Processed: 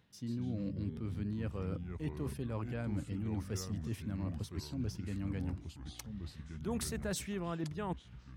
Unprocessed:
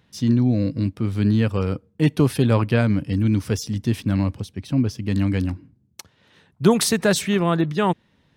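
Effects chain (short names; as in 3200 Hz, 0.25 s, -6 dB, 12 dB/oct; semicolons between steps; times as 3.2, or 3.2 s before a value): dynamic EQ 3800 Hz, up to -5 dB, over -45 dBFS, Q 1.3; reverse; compressor 6:1, threshold -28 dBFS, peak gain reduction 17 dB; reverse; echoes that change speed 0.105 s, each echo -4 st, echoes 3, each echo -6 dB; gain -8 dB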